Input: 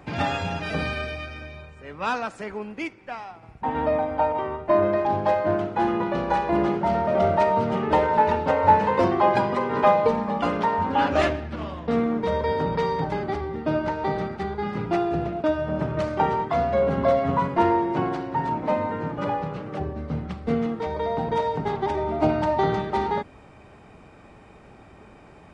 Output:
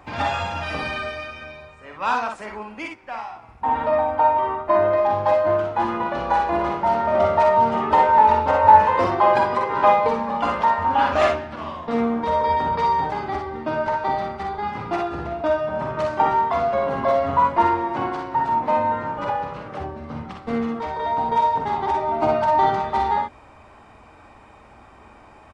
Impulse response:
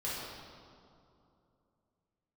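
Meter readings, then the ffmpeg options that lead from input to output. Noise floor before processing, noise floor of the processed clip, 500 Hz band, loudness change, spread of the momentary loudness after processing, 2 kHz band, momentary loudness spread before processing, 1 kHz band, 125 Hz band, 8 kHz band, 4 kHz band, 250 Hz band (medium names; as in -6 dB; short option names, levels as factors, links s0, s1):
-49 dBFS, -48 dBFS, +1.5 dB, +3.5 dB, 15 LU, +3.0 dB, 11 LU, +6.0 dB, -4.0 dB, no reading, +1.5 dB, -3.0 dB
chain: -af "equalizer=f=160:t=o:w=0.67:g=-10,equalizer=f=400:t=o:w=0.67:g=-5,equalizer=f=1000:t=o:w=0.67:g=6,aecho=1:1:47|60:0.473|0.501"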